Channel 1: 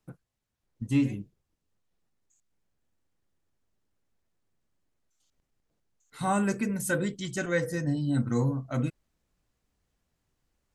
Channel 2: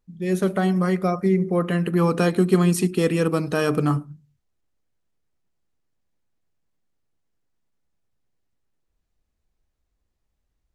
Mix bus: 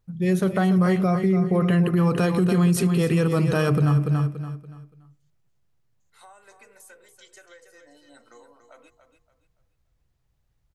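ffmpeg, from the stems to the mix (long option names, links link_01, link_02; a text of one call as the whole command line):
ffmpeg -i stem1.wav -i stem2.wav -filter_complex "[0:a]highpass=frequency=470:width=0.5412,highpass=frequency=470:width=1.3066,acompressor=threshold=-38dB:ratio=10,volume=-9dB,asplit=2[link_01][link_02];[link_02]volume=-8.5dB[link_03];[1:a]equalizer=frequency=125:width_type=o:width=1:gain=12,equalizer=frequency=250:width_type=o:width=1:gain=-5,equalizer=frequency=8000:width_type=o:width=1:gain=-3,volume=2.5dB,asplit=2[link_04][link_05];[link_05]volume=-10dB[link_06];[link_03][link_06]amix=inputs=2:normalize=0,aecho=0:1:286|572|858|1144:1|0.31|0.0961|0.0298[link_07];[link_01][link_04][link_07]amix=inputs=3:normalize=0,alimiter=limit=-13dB:level=0:latency=1:release=59" out.wav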